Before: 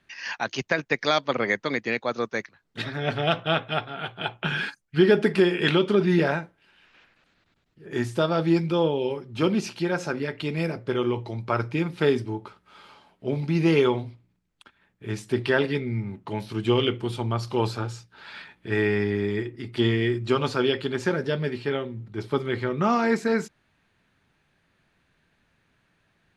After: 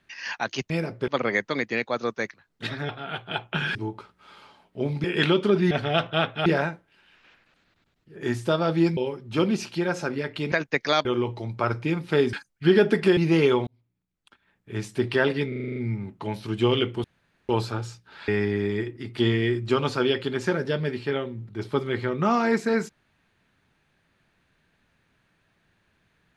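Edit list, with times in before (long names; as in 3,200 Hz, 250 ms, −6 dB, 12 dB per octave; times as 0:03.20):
0:00.70–0:01.23: swap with 0:10.56–0:10.94
0:03.04–0:03.79: move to 0:06.16
0:04.65–0:05.49: swap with 0:12.22–0:13.51
0:08.67–0:09.01: remove
0:14.01–0:15.11: fade in
0:15.82: stutter 0.04 s, 8 plays
0:17.10–0:17.55: fill with room tone
0:18.34–0:18.87: remove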